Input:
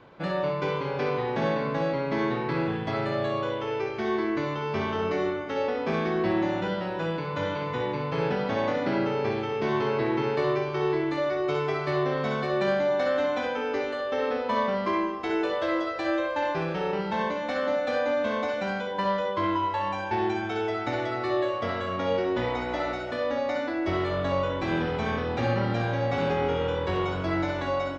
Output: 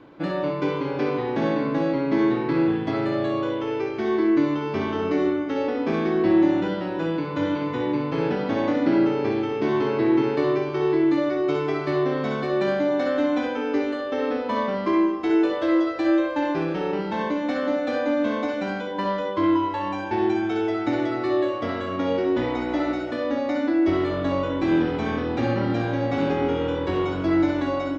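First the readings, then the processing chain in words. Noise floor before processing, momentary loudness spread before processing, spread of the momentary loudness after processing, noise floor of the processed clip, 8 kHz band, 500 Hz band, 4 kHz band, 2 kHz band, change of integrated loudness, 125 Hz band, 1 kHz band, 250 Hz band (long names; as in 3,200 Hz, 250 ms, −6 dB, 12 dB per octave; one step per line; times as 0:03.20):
−32 dBFS, 3 LU, 5 LU, −29 dBFS, can't be measured, +2.5 dB, 0.0 dB, 0.0 dB, +4.0 dB, +0.5 dB, 0.0 dB, +8.5 dB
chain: parametric band 300 Hz +15 dB 0.4 octaves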